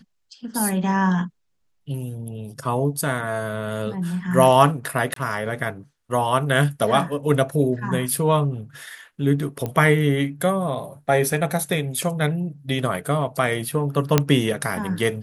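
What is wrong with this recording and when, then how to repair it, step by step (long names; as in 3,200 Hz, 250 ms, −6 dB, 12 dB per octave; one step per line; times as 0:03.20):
0:05.14–0:05.16: drop-out 23 ms
0:09.66: click −14 dBFS
0:14.18: click −1 dBFS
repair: click removal
repair the gap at 0:05.14, 23 ms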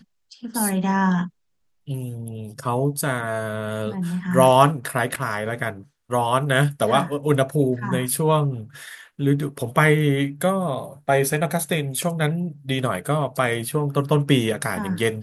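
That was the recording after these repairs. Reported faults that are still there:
0:14.18: click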